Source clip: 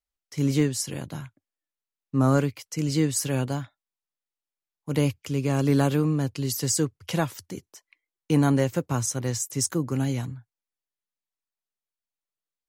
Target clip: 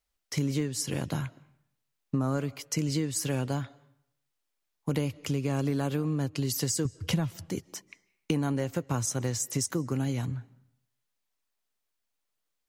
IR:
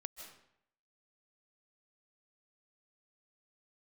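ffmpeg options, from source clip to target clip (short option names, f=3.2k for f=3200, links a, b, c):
-filter_complex "[0:a]asettb=1/sr,asplit=3[a][b][c];[a]atrim=end=6.854[d];[b]atrim=start=6.85:end=7.47,asetpts=PTS-STARTPTS,afade=t=in:d=0.004:c=qsin,afade=t=out:st=0.616:d=0.004:c=qsin,bass=f=250:g=13,treble=f=4k:g=0[e];[c]atrim=start=7.466[f];[d][e]acrossfade=d=0.004:c1=hsin:c2=qsin[g];[g][f]acrossfade=d=0.004:c1=qsin:c2=hsin,acompressor=threshold=-35dB:ratio=6,asplit=2[h][i];[1:a]atrim=start_sample=2205,lowpass=7.4k[j];[i][j]afir=irnorm=-1:irlink=0,volume=-12dB[k];[h][k]amix=inputs=2:normalize=0,volume=7dB"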